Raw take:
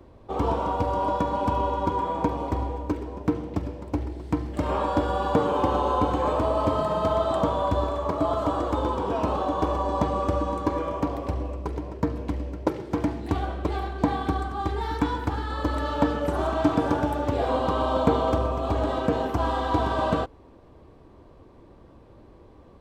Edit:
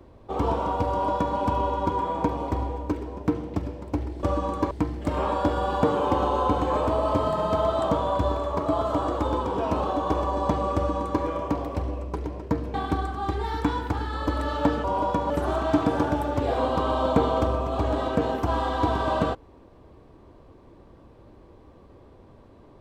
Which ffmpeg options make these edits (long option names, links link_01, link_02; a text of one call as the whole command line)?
ffmpeg -i in.wav -filter_complex "[0:a]asplit=6[link_01][link_02][link_03][link_04][link_05][link_06];[link_01]atrim=end=4.232[link_07];[link_02]atrim=start=10.268:end=10.752[link_08];[link_03]atrim=start=4.228:end=12.262[link_09];[link_04]atrim=start=14.108:end=16.212[link_10];[link_05]atrim=start=0.898:end=1.362[link_11];[link_06]atrim=start=16.208[link_12];[link_07][link_08]acrossfade=duration=0.004:curve1=hsin:curve2=hsin[link_13];[link_13][link_09]acrossfade=duration=0.004:curve1=hsin:curve2=hsin[link_14];[link_14][link_10]acrossfade=duration=0.004:curve1=hsin:curve2=hsin[link_15];[link_15][link_11]acrossfade=duration=0.004:curve1=hsin:curve2=hsin[link_16];[link_16][link_12]acrossfade=duration=0.004:curve1=hsin:curve2=hsin" out.wav